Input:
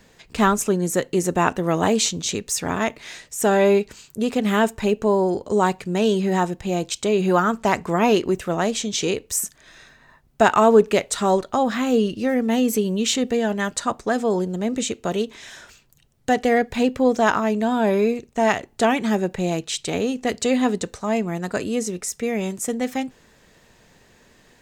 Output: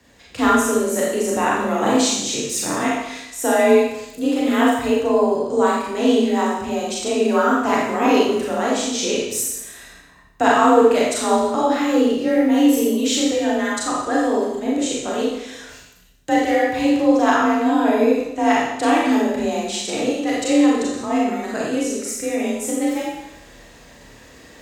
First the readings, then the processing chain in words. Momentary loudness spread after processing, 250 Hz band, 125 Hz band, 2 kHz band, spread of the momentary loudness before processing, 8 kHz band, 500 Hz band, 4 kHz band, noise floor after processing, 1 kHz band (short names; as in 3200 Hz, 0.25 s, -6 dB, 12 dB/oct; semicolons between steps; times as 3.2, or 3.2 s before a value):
8 LU, +3.5 dB, n/a, +2.5 dB, 7 LU, +2.0 dB, +2.0 dB, +2.5 dB, -46 dBFS, +3.0 dB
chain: notches 60/120/180 Hz; reverse; upward compressor, threshold -38 dBFS; reverse; Schroeder reverb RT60 0.87 s, combs from 28 ms, DRR -5 dB; frequency shift +38 Hz; gain -4 dB